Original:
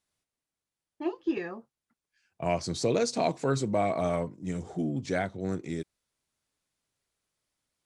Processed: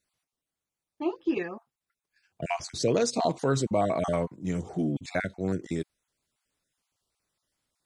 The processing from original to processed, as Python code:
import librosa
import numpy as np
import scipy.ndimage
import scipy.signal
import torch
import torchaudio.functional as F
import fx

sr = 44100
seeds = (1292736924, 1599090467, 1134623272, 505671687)

p1 = fx.spec_dropout(x, sr, seeds[0], share_pct=23)
p2 = fx.level_steps(p1, sr, step_db=18)
y = p1 + F.gain(torch.from_numpy(p2), -2.5).numpy()